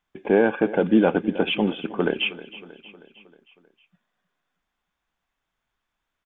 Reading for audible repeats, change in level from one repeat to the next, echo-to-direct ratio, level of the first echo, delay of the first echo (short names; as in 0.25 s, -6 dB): 4, -5.0 dB, -15.5 dB, -17.0 dB, 0.315 s